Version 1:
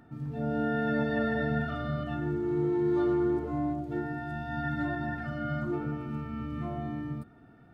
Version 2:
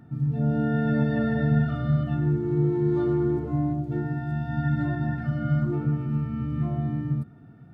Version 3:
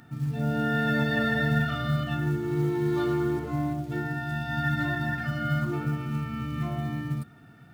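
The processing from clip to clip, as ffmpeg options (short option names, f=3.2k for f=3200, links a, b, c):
-af "equalizer=f=140:w=0.89:g=13.5,volume=-1.5dB"
-af "tiltshelf=f=1.1k:g=-9.5,acrusher=bits=8:mode=log:mix=0:aa=0.000001,volume=5dB"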